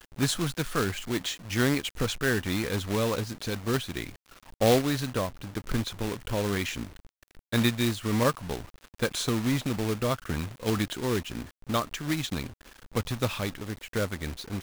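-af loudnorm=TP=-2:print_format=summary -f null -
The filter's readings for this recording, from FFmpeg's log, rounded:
Input Integrated:    -29.8 LUFS
Input True Peak:      -7.2 dBTP
Input LRA:             3.5 LU
Input Threshold:     -40.1 LUFS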